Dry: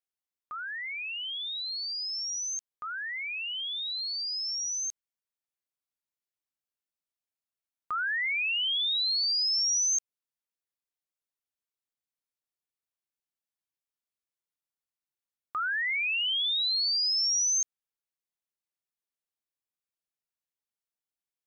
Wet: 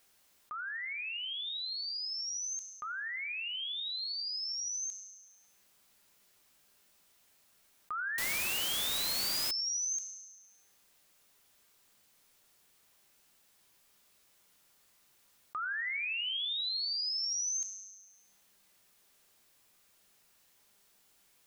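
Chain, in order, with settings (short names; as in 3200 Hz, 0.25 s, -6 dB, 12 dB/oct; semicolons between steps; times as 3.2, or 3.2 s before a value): resonator 200 Hz, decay 0.7 s, harmonics all, mix 70%; 8.18–9.51 requantised 6-bit, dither triangular; fast leveller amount 50%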